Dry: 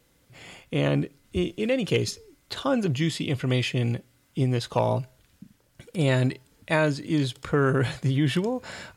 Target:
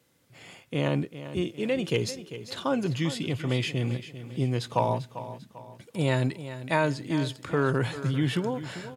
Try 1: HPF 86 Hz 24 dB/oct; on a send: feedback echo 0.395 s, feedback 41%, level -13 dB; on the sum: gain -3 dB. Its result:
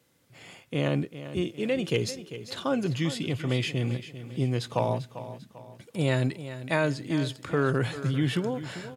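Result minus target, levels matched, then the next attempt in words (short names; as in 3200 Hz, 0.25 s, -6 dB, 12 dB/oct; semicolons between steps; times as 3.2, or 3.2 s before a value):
1000 Hz band -3.0 dB
HPF 86 Hz 24 dB/oct; dynamic EQ 940 Hz, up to +7 dB, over -48 dBFS, Q 6.6; on a send: feedback echo 0.395 s, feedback 41%, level -13 dB; on the sum: gain -3 dB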